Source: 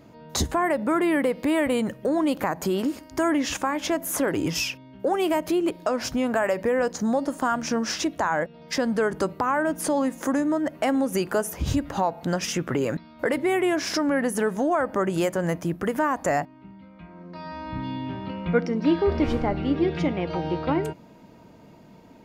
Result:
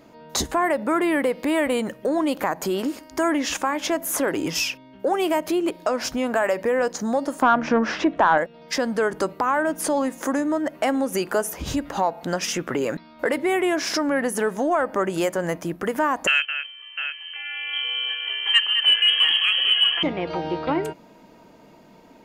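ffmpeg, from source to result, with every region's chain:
ffmpeg -i in.wav -filter_complex "[0:a]asettb=1/sr,asplit=3[link_01][link_02][link_03];[link_01]atrim=end=7.424[link_04];[link_02]atrim=start=7.42:end=8.38,asetpts=PTS-STARTPTS,afade=type=in:duration=0.004:curve=qsin,afade=type=out:start_time=0.956:duration=0.004:curve=qsin,lowpass=2100,acontrast=54[link_05];[link_03]atrim=start=8.376[link_06];[link_04][link_05]acrossfade=duration=0.004:curve1=hsin:curve2=qsin[link_07];[link_07][link_06]acrossfade=duration=0.004:curve1=qsin:curve2=hsin,asettb=1/sr,asplit=3[link_08][link_09][link_10];[link_08]atrim=end=16.274[link_11];[link_09]atrim=start=16.27:end=20.03,asetpts=PTS-STARTPTS,afade=type=in:duration=0.004:curve=qsin,afade=type=out:start_time=3.756:duration=0.004:curve=qsin,lowpass=frequency=2800:width_type=q:width=0.5098,lowpass=frequency=2800:width_type=q:width=0.6013,lowpass=frequency=2800:width_type=q:width=0.9,lowpass=frequency=2800:width_type=q:width=2.563,afreqshift=-3300,equalizer=frequency=1700:width_type=o:width=0.25:gain=10.5,aecho=1:1:212|701:0.355|0.335,atrim=end_sample=165816[link_12];[link_10]atrim=start=20.026[link_13];[link_11][link_12]acrossfade=duration=0.004:curve1=hsin:curve2=qsin[link_14];[link_14][link_13]acrossfade=duration=0.004:curve1=qsin:curve2=hsin,acontrast=35,equalizer=frequency=95:width_type=o:width=2:gain=-11.5,volume=-2.5dB" out.wav

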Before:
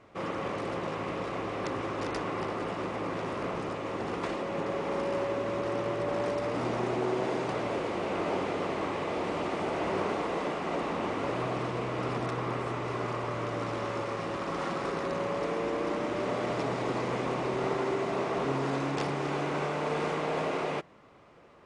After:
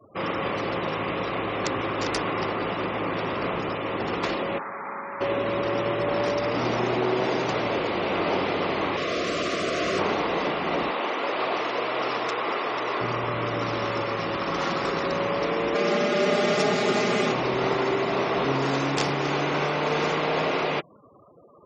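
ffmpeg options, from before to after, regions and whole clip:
ffmpeg -i in.wav -filter_complex "[0:a]asettb=1/sr,asplit=3[link_01][link_02][link_03];[link_01]atrim=end=4.584[link_04];[link_02]atrim=start=4.58:end=5.21,asetpts=PTS-STARTPTS,afade=type=in:duration=0.004:curve=qsin,afade=type=out:start_time=0.626:duration=0.004:curve=qsin,acrossover=split=210|1200[link_05][link_06][link_07];[link_05]acompressor=threshold=-55dB:ratio=4[link_08];[link_06]acompressor=threshold=-45dB:ratio=4[link_09];[link_07]acompressor=threshold=-43dB:ratio=4[link_10];[link_08][link_09][link_10]amix=inputs=3:normalize=0,highpass=140,equalizer=frequency=150:width_type=q:width=4:gain=-7,equalizer=frequency=220:width_type=q:width=4:gain=3,equalizer=frequency=320:width_type=q:width=4:gain=-6,equalizer=frequency=510:width_type=q:width=4:gain=-4,equalizer=frequency=890:width_type=q:width=4:gain=6,equalizer=frequency=1300:width_type=q:width=4:gain=5,lowpass=frequency=2000:width=0.5412,lowpass=frequency=2000:width=1.3066[link_11];[link_03]atrim=start=5.206[link_12];[link_04][link_11]acrossfade=duration=0.004:curve1=hsin:curve2=qsin[link_13];[link_13][link_12]acrossfade=duration=0.004:curve1=qsin:curve2=hsin,asettb=1/sr,asplit=3[link_14][link_15][link_16];[link_14]atrim=end=8.974[link_17];[link_15]atrim=start=8.97:end=9.99,asetpts=PTS-STARTPTS,afade=type=in:duration=0.004:curve=qsin,afade=type=out:start_time=1.016:duration=0.004:curve=qsin,asuperstop=centerf=870:order=12:qfactor=2.8,bass=frequency=250:gain=-3,treble=frequency=4000:gain=5[link_18];[link_16]atrim=start=9.986[link_19];[link_17][link_18]acrossfade=duration=0.004:curve1=hsin:curve2=qsin[link_20];[link_20][link_19]acrossfade=duration=0.004:curve1=qsin:curve2=hsin,asettb=1/sr,asplit=3[link_21][link_22][link_23];[link_21]atrim=end=10.904[link_24];[link_22]atrim=start=10.9:end=13.01,asetpts=PTS-STARTPTS,afade=type=in:duration=0.004:curve=qsin,afade=type=out:start_time=2.106:duration=0.004:curve=qsin,highpass=390,aecho=1:1:492:0.562,atrim=end_sample=93051[link_25];[link_23]atrim=start=13.006[link_26];[link_24][link_25]acrossfade=duration=0.004:curve1=hsin:curve2=qsin[link_27];[link_27][link_26]acrossfade=duration=0.004:curve1=qsin:curve2=hsin,asettb=1/sr,asplit=3[link_28][link_29][link_30];[link_28]atrim=end=15.744[link_31];[link_29]atrim=start=15.74:end=17.32,asetpts=PTS-STARTPTS,afade=type=in:duration=0.004:curve=qsin,afade=type=out:start_time=1.576:duration=0.004:curve=qsin,highpass=frequency=130:width=0.5412,highpass=frequency=130:width=1.3066,bandreject=frequency=980:width=5.4,aecho=1:1:4.9:0.99,atrim=end_sample=69678[link_32];[link_30]atrim=start=17.316[link_33];[link_31][link_32]acrossfade=duration=0.004:curve1=hsin:curve2=qsin[link_34];[link_34][link_33]acrossfade=duration=0.004:curve1=qsin:curve2=hsin,afftfilt=real='re*gte(hypot(re,im),0.00398)':imag='im*gte(hypot(re,im),0.00398)':win_size=1024:overlap=0.75,highshelf=frequency=2700:gain=11,volume=5dB" out.wav

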